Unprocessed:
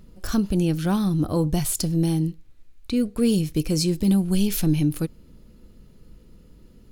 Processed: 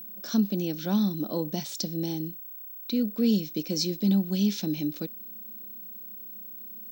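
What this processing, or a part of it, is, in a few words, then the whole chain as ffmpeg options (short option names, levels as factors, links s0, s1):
old television with a line whistle: -af "highpass=f=200:w=0.5412,highpass=f=200:w=1.3066,equalizer=f=210:t=q:w=4:g=9,equalizer=f=580:t=q:w=4:g=4,equalizer=f=1200:t=q:w=4:g=-5,equalizer=f=3800:t=q:w=4:g=9,equalizer=f=5700:t=q:w=4:g=9,lowpass=f=6600:w=0.5412,lowpass=f=6600:w=1.3066,aeval=exprs='val(0)+0.0251*sin(2*PI*15734*n/s)':c=same,volume=0.447"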